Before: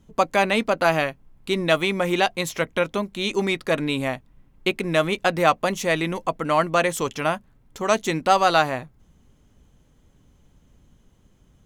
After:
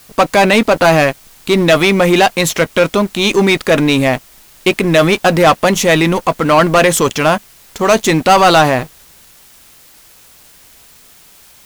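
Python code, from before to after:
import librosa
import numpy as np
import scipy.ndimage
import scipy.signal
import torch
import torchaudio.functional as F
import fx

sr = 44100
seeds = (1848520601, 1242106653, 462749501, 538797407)

p1 = fx.leveller(x, sr, passes=3)
p2 = fx.transient(p1, sr, attack_db=-1, sustain_db=3)
p3 = fx.quant_dither(p2, sr, seeds[0], bits=6, dither='triangular')
p4 = p2 + (p3 * 10.0 ** (-6.5 / 20.0))
y = p4 * 10.0 ** (-1.0 / 20.0)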